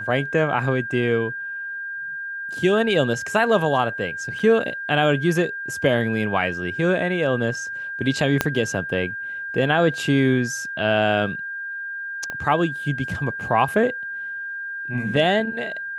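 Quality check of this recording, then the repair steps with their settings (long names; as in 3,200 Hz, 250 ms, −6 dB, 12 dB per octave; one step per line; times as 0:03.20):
whistle 1,600 Hz −28 dBFS
0:04.39: drop-out 4.6 ms
0:08.41: click −3 dBFS
0:12.30: click −16 dBFS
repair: click removal
notch filter 1,600 Hz, Q 30
repair the gap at 0:04.39, 4.6 ms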